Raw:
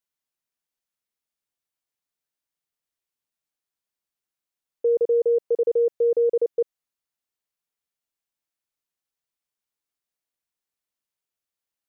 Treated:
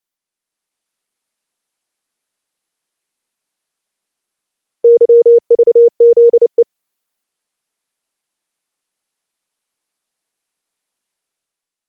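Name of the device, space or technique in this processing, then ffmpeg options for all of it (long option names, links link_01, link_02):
video call: -filter_complex "[0:a]asplit=3[link_01][link_02][link_03];[link_01]afade=type=out:start_time=6.15:duration=0.02[link_04];[link_02]highpass=180,afade=type=in:start_time=6.15:duration=0.02,afade=type=out:start_time=6.58:duration=0.02[link_05];[link_03]afade=type=in:start_time=6.58:duration=0.02[link_06];[link_04][link_05][link_06]amix=inputs=3:normalize=0,highpass=frequency=170:width=0.5412,highpass=frequency=170:width=1.3066,dynaudnorm=framelen=170:gausssize=7:maxgain=9dB,volume=5dB" -ar 48000 -c:a libopus -b:a 20k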